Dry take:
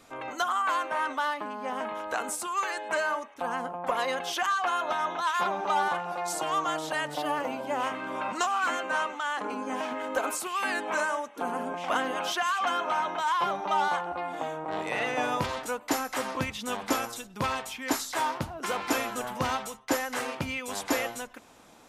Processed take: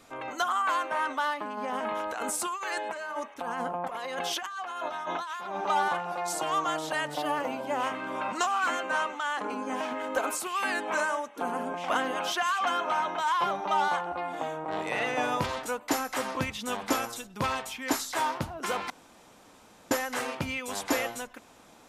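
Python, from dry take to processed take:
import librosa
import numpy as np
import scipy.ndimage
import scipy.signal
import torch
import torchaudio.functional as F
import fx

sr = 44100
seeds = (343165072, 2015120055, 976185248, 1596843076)

y = fx.over_compress(x, sr, threshold_db=-34.0, ratio=-1.0, at=(1.57, 5.56))
y = fx.edit(y, sr, fx.room_tone_fill(start_s=18.9, length_s=1.01), tone=tone)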